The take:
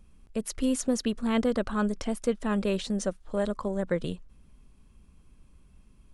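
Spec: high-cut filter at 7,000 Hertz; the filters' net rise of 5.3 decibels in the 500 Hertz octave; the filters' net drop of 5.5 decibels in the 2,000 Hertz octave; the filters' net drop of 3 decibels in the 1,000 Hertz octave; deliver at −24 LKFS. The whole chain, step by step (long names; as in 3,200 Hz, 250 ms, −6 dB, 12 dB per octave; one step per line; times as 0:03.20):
low-pass filter 7,000 Hz
parametric band 500 Hz +7.5 dB
parametric band 1,000 Hz −5 dB
parametric band 2,000 Hz −6 dB
level +3 dB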